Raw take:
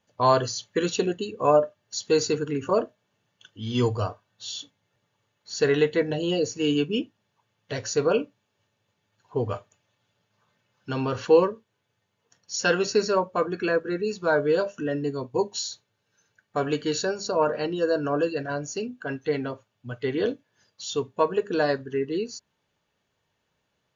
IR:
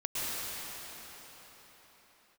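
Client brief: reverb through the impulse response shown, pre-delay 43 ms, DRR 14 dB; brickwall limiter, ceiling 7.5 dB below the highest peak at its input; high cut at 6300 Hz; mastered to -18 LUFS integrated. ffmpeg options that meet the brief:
-filter_complex "[0:a]lowpass=6.3k,alimiter=limit=-15dB:level=0:latency=1,asplit=2[a][b];[1:a]atrim=start_sample=2205,adelay=43[c];[b][c]afir=irnorm=-1:irlink=0,volume=-22dB[d];[a][d]amix=inputs=2:normalize=0,volume=10dB"

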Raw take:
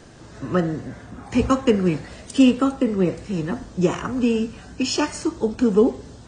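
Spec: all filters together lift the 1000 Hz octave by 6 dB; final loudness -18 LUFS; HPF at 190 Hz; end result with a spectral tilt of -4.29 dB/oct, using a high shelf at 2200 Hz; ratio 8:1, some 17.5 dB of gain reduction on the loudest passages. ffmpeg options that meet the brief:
-af "highpass=190,equalizer=f=1k:t=o:g=6.5,highshelf=f=2.2k:g=3.5,acompressor=threshold=-29dB:ratio=8,volume=16dB"

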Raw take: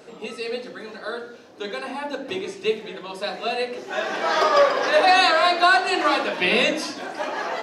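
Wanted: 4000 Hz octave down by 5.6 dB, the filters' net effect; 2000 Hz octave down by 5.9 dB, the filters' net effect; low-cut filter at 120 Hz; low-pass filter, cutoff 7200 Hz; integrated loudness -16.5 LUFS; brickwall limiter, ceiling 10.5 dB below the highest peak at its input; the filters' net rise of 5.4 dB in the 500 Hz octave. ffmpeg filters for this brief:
-af "highpass=120,lowpass=7.2k,equalizer=f=500:t=o:g=7.5,equalizer=f=2k:t=o:g=-8,equalizer=f=4k:t=o:g=-4,volume=7dB,alimiter=limit=-5.5dB:level=0:latency=1"

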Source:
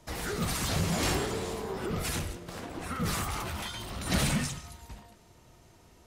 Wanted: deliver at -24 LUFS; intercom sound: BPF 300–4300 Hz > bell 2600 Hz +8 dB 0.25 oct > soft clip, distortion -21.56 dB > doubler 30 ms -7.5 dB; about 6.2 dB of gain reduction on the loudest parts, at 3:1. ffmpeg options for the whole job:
-filter_complex "[0:a]acompressor=threshold=-32dB:ratio=3,highpass=300,lowpass=4.3k,equalizer=f=2.6k:t=o:w=0.25:g=8,asoftclip=threshold=-29dB,asplit=2[a][b];[b]adelay=30,volume=-7.5dB[c];[a][c]amix=inputs=2:normalize=0,volume=14.5dB"

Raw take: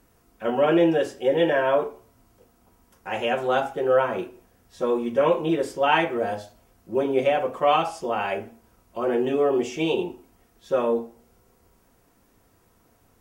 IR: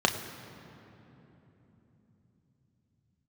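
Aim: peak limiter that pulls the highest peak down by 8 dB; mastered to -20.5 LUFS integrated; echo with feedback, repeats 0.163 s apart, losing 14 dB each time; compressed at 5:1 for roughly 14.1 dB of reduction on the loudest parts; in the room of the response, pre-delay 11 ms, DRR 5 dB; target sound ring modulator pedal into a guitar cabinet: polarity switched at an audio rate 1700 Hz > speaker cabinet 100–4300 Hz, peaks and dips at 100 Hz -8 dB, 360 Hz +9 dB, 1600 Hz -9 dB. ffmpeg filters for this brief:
-filter_complex "[0:a]acompressor=threshold=-32dB:ratio=5,alimiter=level_in=4dB:limit=-24dB:level=0:latency=1,volume=-4dB,aecho=1:1:163|326:0.2|0.0399,asplit=2[a][b];[1:a]atrim=start_sample=2205,adelay=11[c];[b][c]afir=irnorm=-1:irlink=0,volume=-18dB[d];[a][d]amix=inputs=2:normalize=0,aeval=exprs='val(0)*sgn(sin(2*PI*1700*n/s))':c=same,highpass=100,equalizer=f=100:t=q:w=4:g=-8,equalizer=f=360:t=q:w=4:g=9,equalizer=f=1.6k:t=q:w=4:g=-9,lowpass=f=4.3k:w=0.5412,lowpass=f=4.3k:w=1.3066,volume=16dB"

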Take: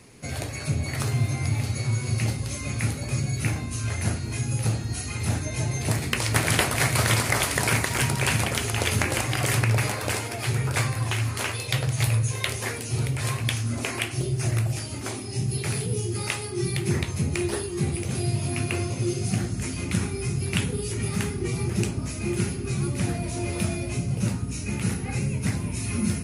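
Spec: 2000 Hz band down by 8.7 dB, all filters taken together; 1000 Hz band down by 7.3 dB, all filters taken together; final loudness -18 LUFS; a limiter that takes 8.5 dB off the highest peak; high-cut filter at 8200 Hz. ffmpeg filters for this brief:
-af "lowpass=8.2k,equalizer=f=1k:t=o:g=-7.5,equalizer=f=2k:t=o:g=-9,volume=11dB,alimiter=limit=-7.5dB:level=0:latency=1"

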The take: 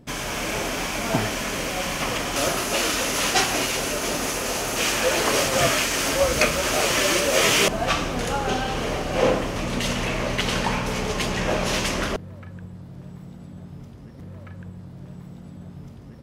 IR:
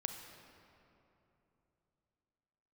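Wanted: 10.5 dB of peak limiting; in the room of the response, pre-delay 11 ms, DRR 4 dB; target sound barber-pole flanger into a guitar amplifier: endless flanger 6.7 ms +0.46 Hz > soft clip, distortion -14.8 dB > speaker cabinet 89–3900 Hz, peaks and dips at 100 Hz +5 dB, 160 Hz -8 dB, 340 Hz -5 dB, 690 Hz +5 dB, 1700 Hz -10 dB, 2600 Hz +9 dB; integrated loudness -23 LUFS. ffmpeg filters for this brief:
-filter_complex "[0:a]alimiter=limit=-14.5dB:level=0:latency=1,asplit=2[a][b];[1:a]atrim=start_sample=2205,adelay=11[c];[b][c]afir=irnorm=-1:irlink=0,volume=-3.5dB[d];[a][d]amix=inputs=2:normalize=0,asplit=2[e][f];[f]adelay=6.7,afreqshift=0.46[g];[e][g]amix=inputs=2:normalize=1,asoftclip=threshold=-22.5dB,highpass=89,equalizer=f=100:t=q:w=4:g=5,equalizer=f=160:t=q:w=4:g=-8,equalizer=f=340:t=q:w=4:g=-5,equalizer=f=690:t=q:w=4:g=5,equalizer=f=1.7k:t=q:w=4:g=-10,equalizer=f=2.6k:t=q:w=4:g=9,lowpass=f=3.9k:w=0.5412,lowpass=f=3.9k:w=1.3066,volume=4.5dB"

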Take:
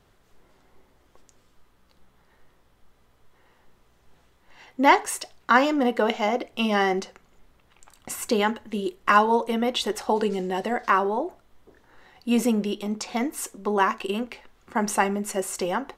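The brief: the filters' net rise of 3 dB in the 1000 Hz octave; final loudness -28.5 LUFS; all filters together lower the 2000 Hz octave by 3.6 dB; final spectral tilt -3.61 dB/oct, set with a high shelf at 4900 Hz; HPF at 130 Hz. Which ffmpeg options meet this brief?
-af "highpass=130,equalizer=f=1k:t=o:g=5,equalizer=f=2k:t=o:g=-7.5,highshelf=f=4.9k:g=3.5,volume=-5.5dB"

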